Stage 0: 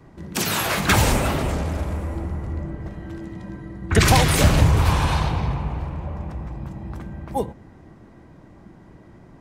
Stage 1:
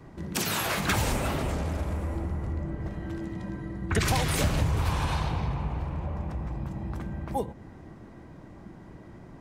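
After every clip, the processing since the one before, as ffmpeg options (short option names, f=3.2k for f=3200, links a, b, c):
-af "acompressor=threshold=-30dB:ratio=2"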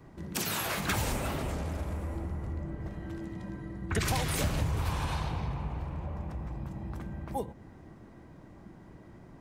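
-af "highshelf=f=12k:g=5.5,volume=-4.5dB"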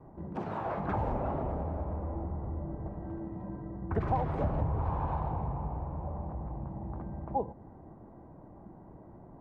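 -af "lowpass=f=830:t=q:w=1.9,volume=-1dB"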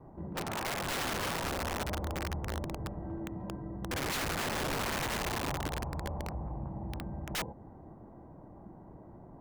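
-af "aeval=exprs='(mod(28.2*val(0)+1,2)-1)/28.2':c=same"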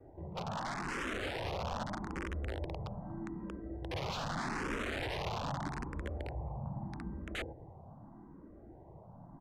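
-filter_complex "[0:a]acrossover=split=420|1500[a][b][c];[a]aecho=1:1:196:0.447[d];[c]adynamicsmooth=sensitivity=1:basefreq=4.9k[e];[d][b][e]amix=inputs=3:normalize=0,asplit=2[f][g];[g]afreqshift=0.81[h];[f][h]amix=inputs=2:normalize=1"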